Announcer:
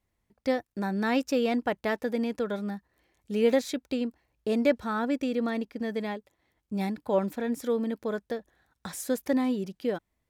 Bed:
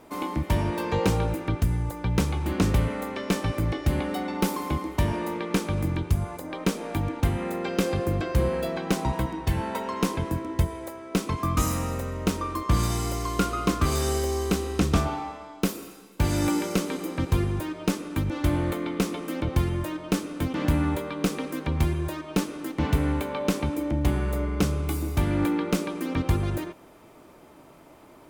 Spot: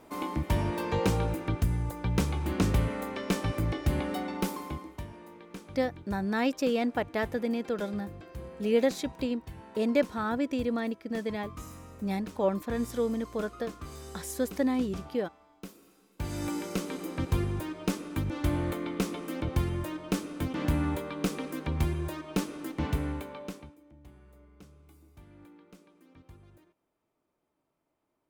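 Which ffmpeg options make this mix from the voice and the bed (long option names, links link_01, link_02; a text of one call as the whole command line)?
ffmpeg -i stem1.wav -i stem2.wav -filter_complex "[0:a]adelay=5300,volume=-1.5dB[link_01];[1:a]volume=11dB,afade=type=out:start_time=4.17:duration=0.91:silence=0.16788,afade=type=in:start_time=15.81:duration=1.36:silence=0.188365,afade=type=out:start_time=22.69:duration=1.07:silence=0.0562341[link_02];[link_01][link_02]amix=inputs=2:normalize=0" out.wav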